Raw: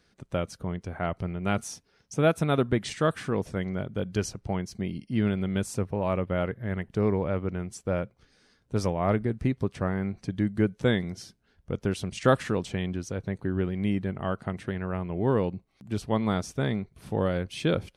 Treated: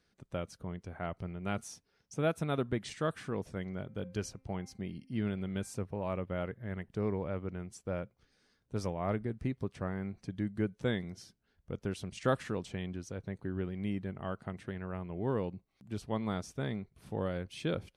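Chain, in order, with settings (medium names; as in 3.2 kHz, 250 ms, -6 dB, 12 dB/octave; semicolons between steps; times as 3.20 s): 3.82–5.74 s: de-hum 262.3 Hz, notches 10; trim -8.5 dB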